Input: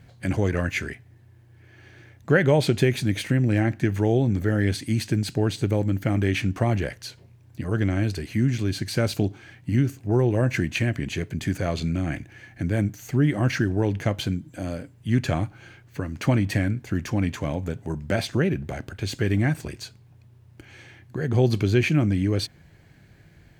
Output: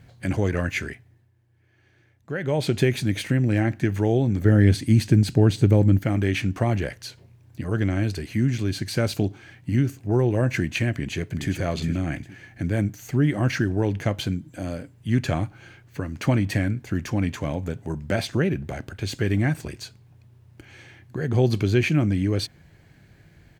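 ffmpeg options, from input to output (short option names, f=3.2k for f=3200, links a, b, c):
-filter_complex "[0:a]asettb=1/sr,asplit=3[a][b][c];[a]atrim=end=4.454[d];[b]atrim=start=4.45:end=5.99,asetpts=PTS-STARTPTS,afade=t=in:d=0.004:c=qsin,afade=t=out:st=1.536:d=0.004:c=qsin,lowshelf=f=380:g=8[e];[c]atrim=start=5.986[f];[d][e]acrossfade=d=0.004:c1=hsin:c2=qsin[g];[g][f]acrossfade=d=0.004:c1=qsin:c2=hsin,asplit=2[h][i];[i]afade=t=in:st=10.91:d=0.01,afade=t=out:st=11.54:d=0.01,aecho=0:1:410|820|1230:0.398107|0.0995268|0.0248817[j];[h][j]amix=inputs=2:normalize=0,asplit=3[k][l][m];[k]atrim=end=1.31,asetpts=PTS-STARTPTS,afade=t=out:st=0.86:d=0.45:silence=0.266073[n];[l]atrim=start=1.31:end=2.35,asetpts=PTS-STARTPTS,volume=-11.5dB[o];[m]atrim=start=2.35,asetpts=PTS-STARTPTS,afade=t=in:d=0.45:silence=0.266073[p];[n][o][p]concat=n=3:v=0:a=1"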